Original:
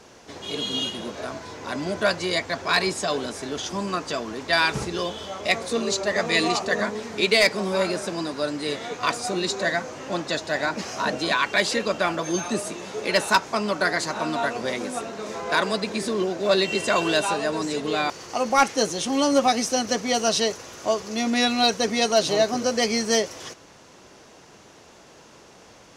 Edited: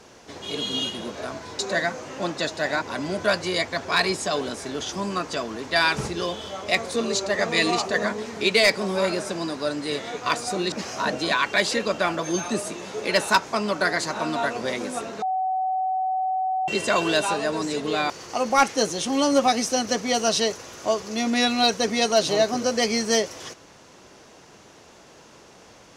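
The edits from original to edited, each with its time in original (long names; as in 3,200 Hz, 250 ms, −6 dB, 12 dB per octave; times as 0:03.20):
0:09.49–0:10.72: move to 0:01.59
0:15.22–0:16.68: beep over 753 Hz −21.5 dBFS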